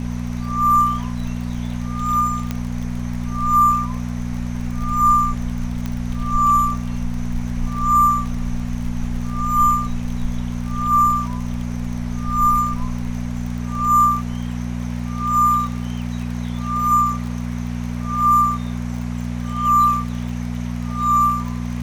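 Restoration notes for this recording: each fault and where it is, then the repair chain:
crackle 40/s -28 dBFS
hum 60 Hz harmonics 4 -25 dBFS
2.51 pop -10 dBFS
5.86 pop -13 dBFS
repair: de-click; de-hum 60 Hz, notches 4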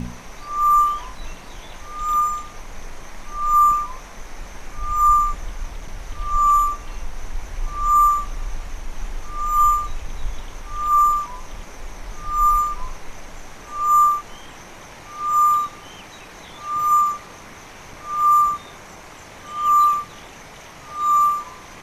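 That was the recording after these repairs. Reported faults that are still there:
5.86 pop

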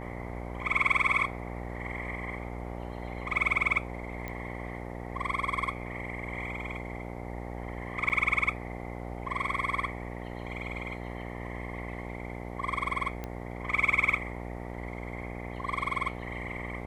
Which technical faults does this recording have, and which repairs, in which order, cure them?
buzz 60 Hz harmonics 15 -39 dBFS
4.28 pop -23 dBFS
8.09–8.1 gap 8.3 ms
13.24 pop -22 dBFS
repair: de-click; de-hum 60 Hz, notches 15; interpolate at 8.09, 8.3 ms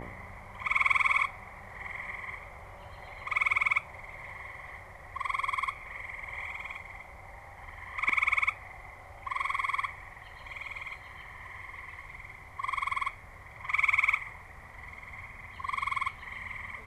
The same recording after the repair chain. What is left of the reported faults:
4.28 pop
13.24 pop

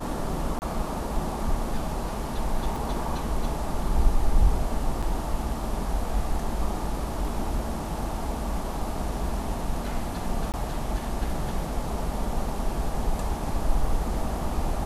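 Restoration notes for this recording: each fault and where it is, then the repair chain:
0.59–0.62 gap 29 ms
2.76 gap 2.1 ms
5.02–5.03 gap 5.9 ms
10.52–10.54 gap 18 ms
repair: interpolate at 0.59, 29 ms; interpolate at 2.76, 2.1 ms; interpolate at 5.02, 5.9 ms; interpolate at 10.52, 18 ms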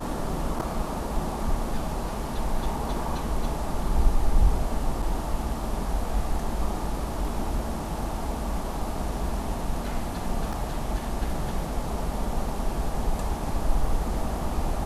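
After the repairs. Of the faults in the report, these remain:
none

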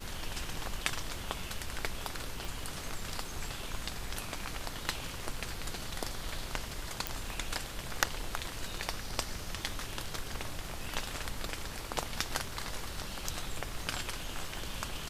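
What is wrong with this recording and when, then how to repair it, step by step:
crackle 20/s -45 dBFS
2.45 pop
7.07 pop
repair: de-click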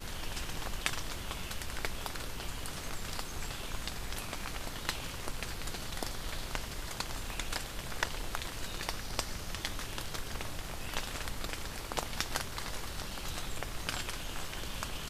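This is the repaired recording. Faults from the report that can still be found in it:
2.45 pop

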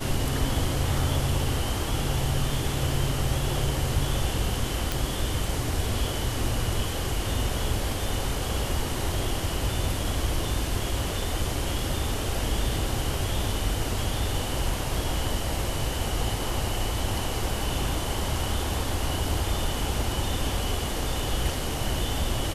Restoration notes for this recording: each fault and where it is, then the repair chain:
4.92 pop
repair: de-click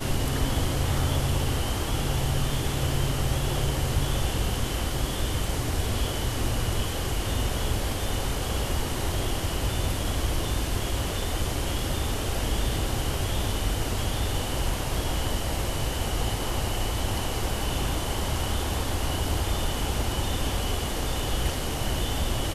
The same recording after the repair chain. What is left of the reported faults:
none

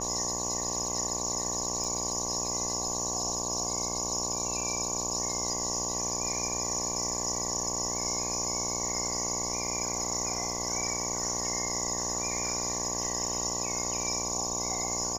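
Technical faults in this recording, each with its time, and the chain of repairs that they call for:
buzz 60 Hz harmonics 19 -37 dBFS
crackle 29/s -41 dBFS
1.84 gap 4.6 ms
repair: de-click; de-hum 60 Hz, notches 19; interpolate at 1.84, 4.6 ms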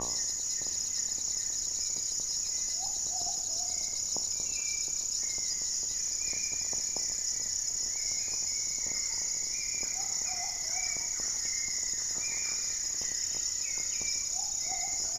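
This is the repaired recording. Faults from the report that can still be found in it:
none

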